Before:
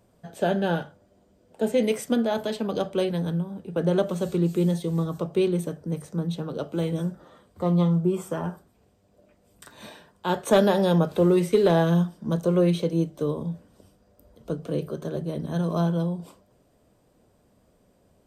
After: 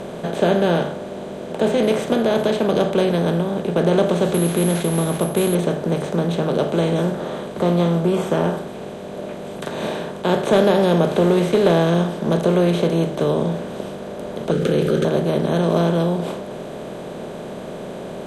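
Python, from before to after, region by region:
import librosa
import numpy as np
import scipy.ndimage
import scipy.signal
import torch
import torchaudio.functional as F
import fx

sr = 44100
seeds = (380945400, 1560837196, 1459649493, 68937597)

y = fx.chain(x, sr, fx.peak_eq(hz=480.0, db=-6.0, octaves=1.0),
    fx.resample_bad(factor=4, down='none', up='zero_stuff'), at=(4.34, 5.55))
y = fx.chain(y, sr, fx.brickwall_bandstop(low_hz=560.0, high_hz=1200.0),
    fx.env_flatten(amount_pct=70), at=(14.51, 15.05))
y = fx.bin_compress(y, sr, power=0.4)
y = scipy.signal.sosfilt(scipy.signal.butter(2, 6100.0, 'lowpass', fs=sr, output='sos'), y)
y = fx.notch(y, sr, hz=860.0, q=26.0)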